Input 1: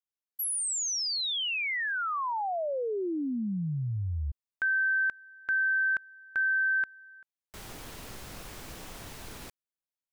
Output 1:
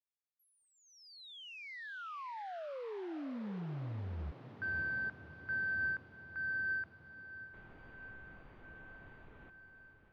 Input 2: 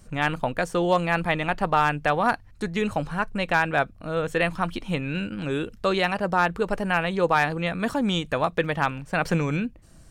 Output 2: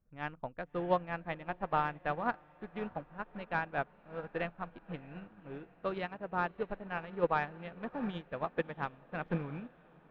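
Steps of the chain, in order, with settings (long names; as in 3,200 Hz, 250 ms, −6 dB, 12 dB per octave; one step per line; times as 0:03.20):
adaptive Wiener filter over 9 samples
high-frequency loss of the air 300 metres
on a send: feedback delay with all-pass diffusion 634 ms, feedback 74%, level −12.5 dB
on the sum: expander for the loud parts 2.5 to 1, over −32 dBFS
level −5.5 dB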